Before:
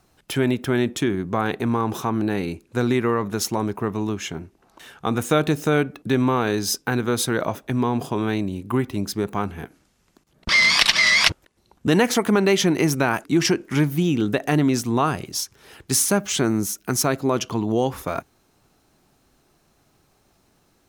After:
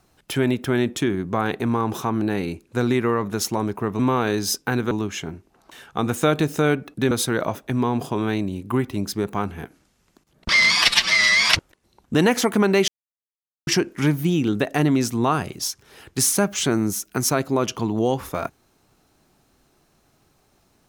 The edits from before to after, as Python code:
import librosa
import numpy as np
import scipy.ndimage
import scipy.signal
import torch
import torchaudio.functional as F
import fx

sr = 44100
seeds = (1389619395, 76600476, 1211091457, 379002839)

y = fx.edit(x, sr, fx.move(start_s=6.19, length_s=0.92, to_s=3.99),
    fx.stretch_span(start_s=10.72, length_s=0.54, factor=1.5),
    fx.silence(start_s=12.61, length_s=0.79), tone=tone)